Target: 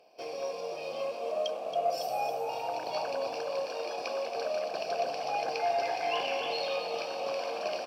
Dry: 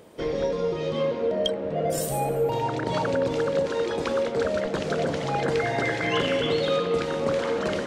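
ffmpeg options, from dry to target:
-filter_complex "[0:a]superequalizer=10b=0.316:13b=0.562:14b=3.16:15b=0.316:16b=0.282,asplit=2[s0][s1];[s1]acrusher=bits=3:dc=4:mix=0:aa=0.000001,volume=0.376[s2];[s0][s2]amix=inputs=2:normalize=0,asplit=3[s3][s4][s5];[s3]bandpass=f=730:t=q:w=8,volume=1[s6];[s4]bandpass=f=1090:t=q:w=8,volume=0.501[s7];[s5]bandpass=f=2440:t=q:w=8,volume=0.355[s8];[s6][s7][s8]amix=inputs=3:normalize=0,asplit=8[s9][s10][s11][s12][s13][s14][s15][s16];[s10]adelay=276,afreqshift=51,volume=0.355[s17];[s11]adelay=552,afreqshift=102,volume=0.202[s18];[s12]adelay=828,afreqshift=153,volume=0.115[s19];[s13]adelay=1104,afreqshift=204,volume=0.0661[s20];[s14]adelay=1380,afreqshift=255,volume=0.0376[s21];[s15]adelay=1656,afreqshift=306,volume=0.0214[s22];[s16]adelay=1932,afreqshift=357,volume=0.0122[s23];[s9][s17][s18][s19][s20][s21][s22][s23]amix=inputs=8:normalize=0,crystalizer=i=6:c=0"

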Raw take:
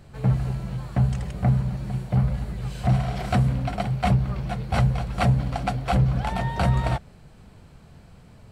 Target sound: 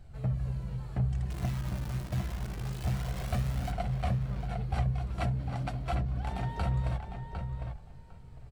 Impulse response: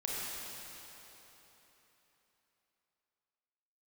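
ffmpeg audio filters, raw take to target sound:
-filter_complex "[0:a]lowshelf=f=160:g=10.5,bandreject=f=50:t=h:w=6,bandreject=f=100:t=h:w=6,bandreject=f=150:t=h:w=6,bandreject=f=200:t=h:w=6,bandreject=f=250:t=h:w=6,acompressor=threshold=0.141:ratio=3,asplit=3[s0][s1][s2];[s0]afade=t=out:st=1.3:d=0.02[s3];[s1]acrusher=bits=6:dc=4:mix=0:aa=0.000001,afade=t=in:st=1.3:d=0.02,afade=t=out:st=3.71:d=0.02[s4];[s2]afade=t=in:st=3.71:d=0.02[s5];[s3][s4][s5]amix=inputs=3:normalize=0,flanger=delay=1.3:depth=2.1:regen=51:speed=0.27:shape=triangular,asplit=2[s6][s7];[s7]adelay=754,lowpass=f=2900:p=1,volume=0.501,asplit=2[s8][s9];[s9]adelay=754,lowpass=f=2900:p=1,volume=0.16,asplit=2[s10][s11];[s11]adelay=754,lowpass=f=2900:p=1,volume=0.16[s12];[s6][s8][s10][s12]amix=inputs=4:normalize=0,volume=0.473"

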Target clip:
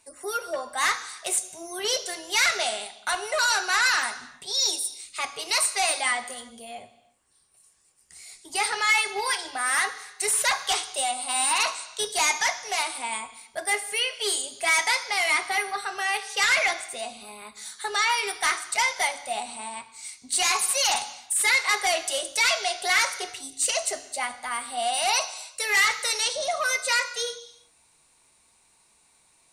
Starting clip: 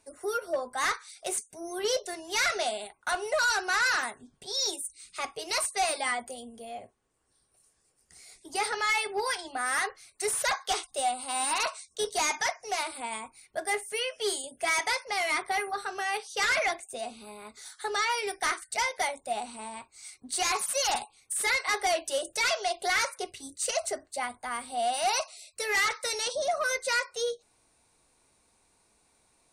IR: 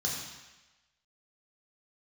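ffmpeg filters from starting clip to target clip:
-filter_complex "[0:a]tiltshelf=f=800:g=-5,asplit=2[s0][s1];[1:a]atrim=start_sample=2205,afade=t=out:st=0.43:d=0.01,atrim=end_sample=19404[s2];[s1][s2]afir=irnorm=-1:irlink=0,volume=0.168[s3];[s0][s3]amix=inputs=2:normalize=0,volume=1.33"

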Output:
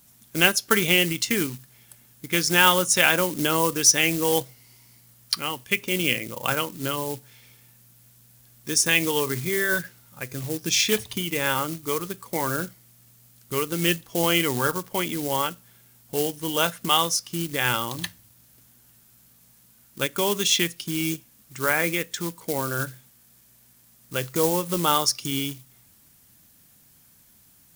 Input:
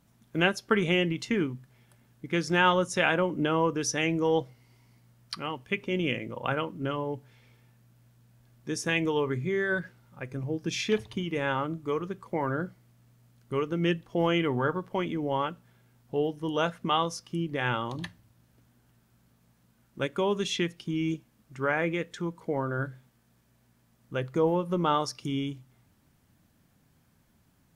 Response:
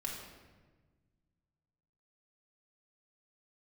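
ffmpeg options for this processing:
-af "acrusher=bits=5:mode=log:mix=0:aa=0.000001,crystalizer=i=5.5:c=0,volume=1.12"

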